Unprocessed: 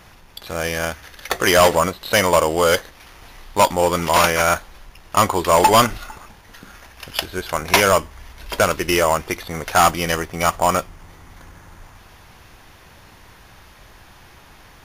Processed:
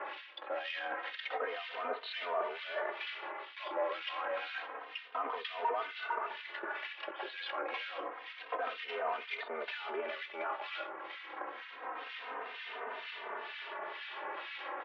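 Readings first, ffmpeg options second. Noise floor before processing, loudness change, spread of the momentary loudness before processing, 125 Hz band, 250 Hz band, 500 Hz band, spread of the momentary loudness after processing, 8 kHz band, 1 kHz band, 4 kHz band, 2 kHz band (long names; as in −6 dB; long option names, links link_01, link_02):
−47 dBFS, −21.5 dB, 13 LU, below −40 dB, −27.5 dB, −20.0 dB, 7 LU, below −40 dB, −19.0 dB, −18.0 dB, −16.0 dB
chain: -filter_complex "[0:a]asplit=2[link_01][link_02];[link_02]aeval=exprs='0.501*sin(PI/2*6.31*val(0)/0.501)':channel_layout=same,volume=-9dB[link_03];[link_01][link_03]amix=inputs=2:normalize=0,aecho=1:1:92:0.0891,alimiter=limit=-14dB:level=0:latency=1:release=15,areverse,acompressor=threshold=-30dB:ratio=10,areverse,aeval=exprs='sgn(val(0))*max(abs(val(0))-0.00422,0)':channel_layout=same,acrossover=split=1700[link_04][link_05];[link_04]aeval=exprs='val(0)*(1-1/2+1/2*cos(2*PI*2.1*n/s))':channel_layout=same[link_06];[link_05]aeval=exprs='val(0)*(1-1/2-1/2*cos(2*PI*2.1*n/s))':channel_layout=same[link_07];[link_06][link_07]amix=inputs=2:normalize=0,highpass=frequency=330:width_type=q:width=0.5412,highpass=frequency=330:width_type=q:width=1.307,lowpass=frequency=3300:width_type=q:width=0.5176,lowpass=frequency=3300:width_type=q:width=0.7071,lowpass=frequency=3300:width_type=q:width=1.932,afreqshift=69,asplit=2[link_08][link_09];[link_09]adelay=3.1,afreqshift=-0.28[link_10];[link_08][link_10]amix=inputs=2:normalize=1,volume=5dB"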